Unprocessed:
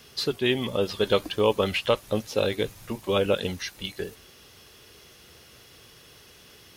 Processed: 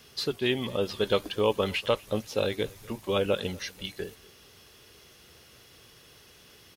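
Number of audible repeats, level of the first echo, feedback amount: 2, -24.0 dB, 38%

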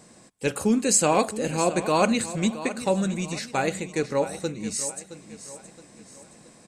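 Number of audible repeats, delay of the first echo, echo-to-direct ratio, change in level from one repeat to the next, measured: 3, 0.669 s, -12.5 dB, -7.5 dB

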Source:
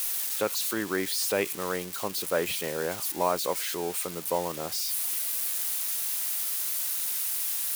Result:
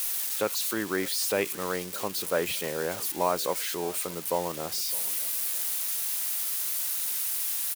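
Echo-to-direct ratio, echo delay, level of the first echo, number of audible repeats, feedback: -20.0 dB, 0.61 s, -20.5 dB, 2, 28%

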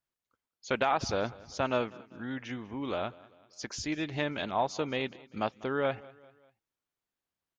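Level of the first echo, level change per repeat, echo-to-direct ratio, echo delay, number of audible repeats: -21.5 dB, -6.5 dB, -20.5 dB, 0.196 s, 3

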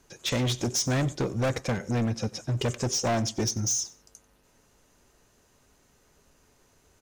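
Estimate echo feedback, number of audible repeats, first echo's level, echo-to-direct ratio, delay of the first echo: 24%, 2, -21.5 dB, -21.5 dB, 92 ms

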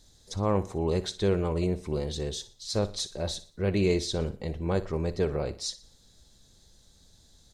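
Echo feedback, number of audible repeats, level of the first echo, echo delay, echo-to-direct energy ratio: 40%, 3, -16.0 dB, 60 ms, -15.5 dB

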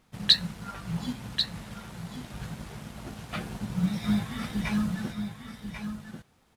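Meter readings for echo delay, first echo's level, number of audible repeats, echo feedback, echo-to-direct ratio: 1.091 s, -8.0 dB, 1, no steady repeat, -8.0 dB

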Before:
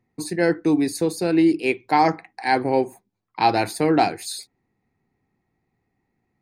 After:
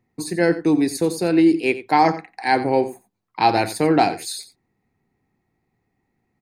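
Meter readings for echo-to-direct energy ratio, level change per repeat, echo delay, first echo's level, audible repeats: -15.0 dB, no steady repeat, 89 ms, -15.0 dB, 1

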